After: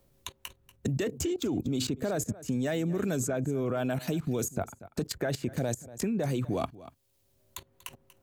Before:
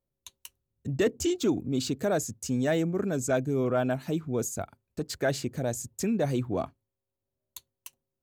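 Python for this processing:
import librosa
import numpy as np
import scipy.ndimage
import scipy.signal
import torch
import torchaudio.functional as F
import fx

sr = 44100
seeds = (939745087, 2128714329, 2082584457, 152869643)

p1 = fx.dynamic_eq(x, sr, hz=5300.0, q=1.0, threshold_db=-51.0, ratio=4.0, max_db=-5)
p2 = fx.level_steps(p1, sr, step_db=19)
p3 = p2 + fx.echo_single(p2, sr, ms=238, db=-20.5, dry=0)
p4 = fx.band_squash(p3, sr, depth_pct=70)
y = p4 * 10.0 ** (8.5 / 20.0)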